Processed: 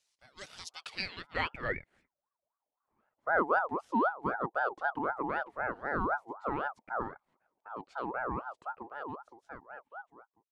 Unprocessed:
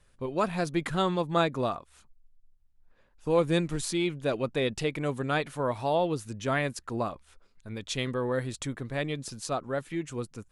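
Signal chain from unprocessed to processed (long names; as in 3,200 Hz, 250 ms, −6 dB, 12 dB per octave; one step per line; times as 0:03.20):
fade-out on the ending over 2.78 s
band-pass filter sweep 5,400 Hz → 310 Hz, 0:00.67–0:02.63
ring modulator whose carrier an LFO sweeps 860 Hz, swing 35%, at 3.9 Hz
level +5 dB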